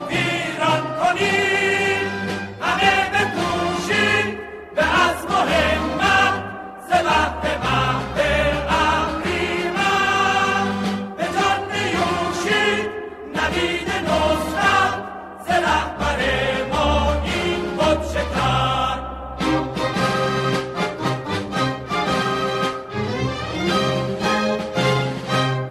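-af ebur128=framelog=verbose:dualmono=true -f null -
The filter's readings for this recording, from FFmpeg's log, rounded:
Integrated loudness:
  I:         -16.8 LUFS
  Threshold: -26.9 LUFS
Loudness range:
  LRA:         3.1 LU
  Threshold: -36.9 LUFS
  LRA low:   -18.7 LUFS
  LRA high:  -15.6 LUFS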